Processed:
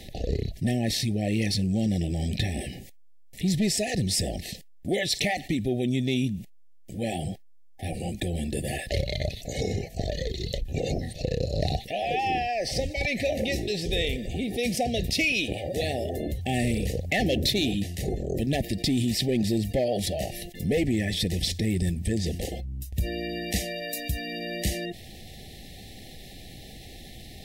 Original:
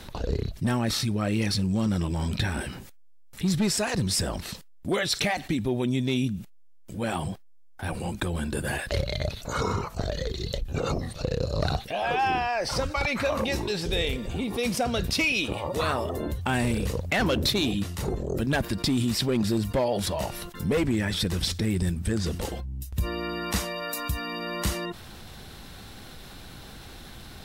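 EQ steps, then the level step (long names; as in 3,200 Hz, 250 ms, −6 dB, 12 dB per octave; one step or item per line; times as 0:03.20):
linear-phase brick-wall band-stop 810–1,700 Hz
0.0 dB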